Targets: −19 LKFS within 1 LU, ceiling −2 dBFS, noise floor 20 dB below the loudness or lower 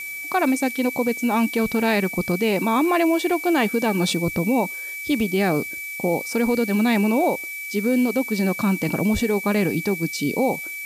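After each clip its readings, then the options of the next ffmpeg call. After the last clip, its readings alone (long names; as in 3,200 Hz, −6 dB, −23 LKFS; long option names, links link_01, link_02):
interfering tone 2,300 Hz; level of the tone −30 dBFS; background noise floor −32 dBFS; target noise floor −42 dBFS; integrated loudness −21.5 LKFS; sample peak −8.5 dBFS; target loudness −19.0 LKFS
→ -af "bandreject=frequency=2300:width=30"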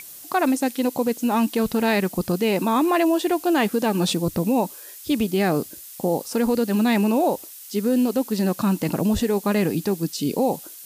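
interfering tone none found; background noise floor −41 dBFS; target noise floor −42 dBFS
→ -af "afftdn=noise_reduction=6:noise_floor=-41"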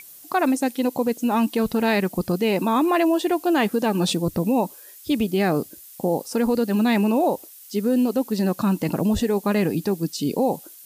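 background noise floor −45 dBFS; integrated loudness −22.5 LKFS; sample peak −9.0 dBFS; target loudness −19.0 LKFS
→ -af "volume=3.5dB"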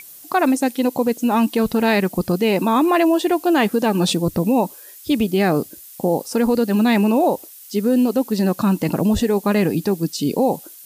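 integrated loudness −19.0 LKFS; sample peak −5.5 dBFS; background noise floor −41 dBFS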